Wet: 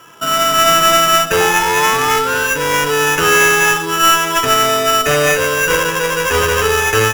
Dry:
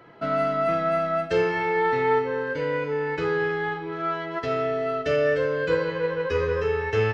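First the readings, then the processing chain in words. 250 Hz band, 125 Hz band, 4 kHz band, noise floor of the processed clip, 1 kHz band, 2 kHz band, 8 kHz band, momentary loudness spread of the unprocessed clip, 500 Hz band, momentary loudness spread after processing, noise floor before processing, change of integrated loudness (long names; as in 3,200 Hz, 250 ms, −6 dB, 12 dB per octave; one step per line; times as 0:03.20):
+7.0 dB, +7.5 dB, +25.5 dB, −20 dBFS, +14.0 dB, +15.5 dB, can't be measured, 5 LU, +6.5 dB, 5 LU, −34 dBFS, +12.5 dB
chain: flat-topped bell 1,300 Hz +11 dB 1.1 octaves
automatic gain control gain up to 11.5 dB
sample-rate reduction 4,300 Hz, jitter 0%
sound drawn into the spectrogram rise, 0:01.40–0:02.51, 790–1,600 Hz −21 dBFS
asymmetric clip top −16.5 dBFS
level +2 dB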